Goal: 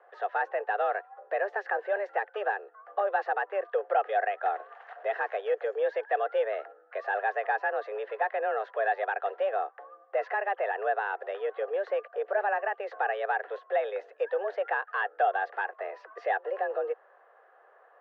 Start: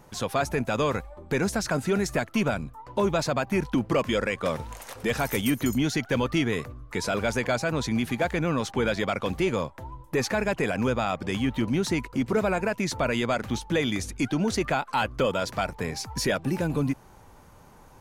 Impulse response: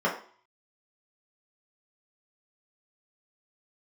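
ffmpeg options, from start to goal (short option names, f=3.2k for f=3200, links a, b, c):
-af "highpass=f=260:w=0.5412,highpass=f=260:w=1.3066,equalizer=f=310:t=q:w=4:g=6,equalizer=f=540:t=q:w=4:g=7,equalizer=f=810:t=q:w=4:g=-6,equalizer=f=1.5k:t=q:w=4:g=8,equalizer=f=2.1k:t=q:w=4:g=-10,lowpass=f=2.2k:w=0.5412,lowpass=f=2.2k:w=1.3066,afreqshift=200,volume=-5dB"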